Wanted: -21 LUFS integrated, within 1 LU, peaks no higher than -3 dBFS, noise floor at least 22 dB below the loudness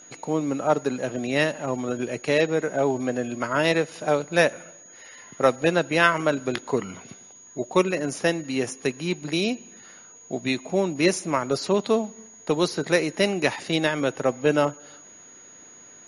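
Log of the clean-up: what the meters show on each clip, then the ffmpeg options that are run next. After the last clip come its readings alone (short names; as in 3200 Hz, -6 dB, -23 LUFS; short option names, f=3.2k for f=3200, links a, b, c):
steady tone 6700 Hz; tone level -46 dBFS; loudness -24.5 LUFS; peak -3.5 dBFS; loudness target -21.0 LUFS
-> -af "bandreject=f=6.7k:w=30"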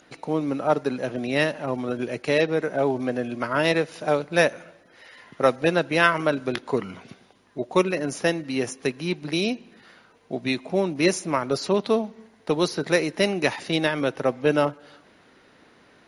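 steady tone none; loudness -24.5 LUFS; peak -3.5 dBFS; loudness target -21.0 LUFS
-> -af "volume=3.5dB,alimiter=limit=-3dB:level=0:latency=1"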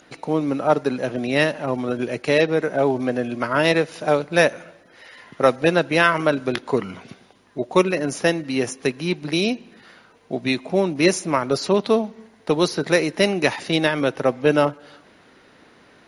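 loudness -21.0 LUFS; peak -3.0 dBFS; noise floor -53 dBFS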